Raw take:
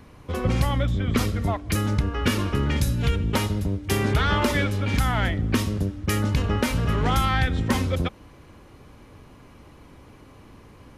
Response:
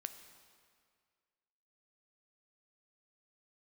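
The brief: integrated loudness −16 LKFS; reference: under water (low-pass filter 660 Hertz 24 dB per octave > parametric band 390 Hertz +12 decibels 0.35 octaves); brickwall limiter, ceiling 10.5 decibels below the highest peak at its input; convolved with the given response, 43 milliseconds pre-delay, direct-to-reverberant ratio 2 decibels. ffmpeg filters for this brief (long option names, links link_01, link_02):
-filter_complex "[0:a]alimiter=limit=-21.5dB:level=0:latency=1,asplit=2[link_01][link_02];[1:a]atrim=start_sample=2205,adelay=43[link_03];[link_02][link_03]afir=irnorm=-1:irlink=0,volume=1dB[link_04];[link_01][link_04]amix=inputs=2:normalize=0,lowpass=frequency=660:width=0.5412,lowpass=frequency=660:width=1.3066,equalizer=frequency=390:width_type=o:width=0.35:gain=12,volume=11dB"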